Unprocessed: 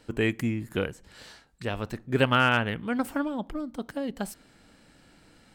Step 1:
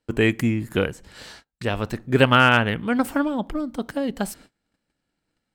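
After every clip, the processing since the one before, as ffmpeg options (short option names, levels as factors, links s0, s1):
-af "agate=range=0.0398:threshold=0.00251:ratio=16:detection=peak,volume=2.11"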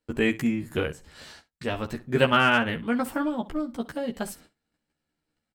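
-af "aecho=1:1:13|67:0.708|0.15,volume=0.501"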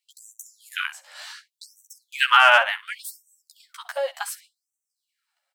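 -af "afftfilt=real='re*gte(b*sr/1024,510*pow(5800/510,0.5+0.5*sin(2*PI*0.68*pts/sr)))':imag='im*gte(b*sr/1024,510*pow(5800/510,0.5+0.5*sin(2*PI*0.68*pts/sr)))':win_size=1024:overlap=0.75,volume=2.24"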